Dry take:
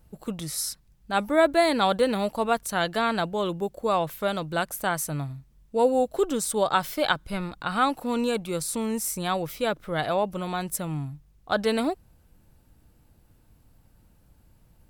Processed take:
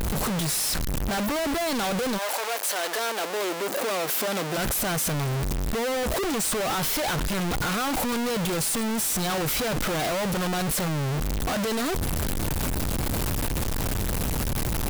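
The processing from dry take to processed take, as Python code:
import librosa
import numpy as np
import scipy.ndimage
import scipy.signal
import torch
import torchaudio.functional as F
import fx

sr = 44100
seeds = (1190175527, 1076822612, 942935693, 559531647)

y = np.sign(x) * np.sqrt(np.mean(np.square(x)))
y = fx.highpass(y, sr, hz=fx.line((2.17, 560.0), (4.56, 180.0)), slope=24, at=(2.17, 4.56), fade=0.02)
y = F.gain(torch.from_numpy(y), 1.5).numpy()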